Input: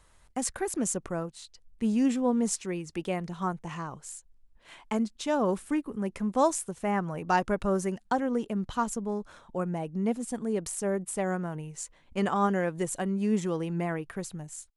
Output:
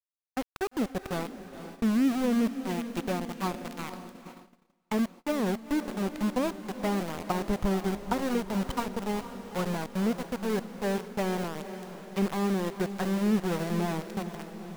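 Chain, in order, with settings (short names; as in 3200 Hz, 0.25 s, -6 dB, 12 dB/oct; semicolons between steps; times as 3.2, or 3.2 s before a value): treble ducked by the level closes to 440 Hz, closed at -23 dBFS; low shelf 94 Hz +9 dB; sample gate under -29.5 dBFS; diffused feedback echo 0.473 s, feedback 58%, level -11 dB; gate -44 dBFS, range -26 dB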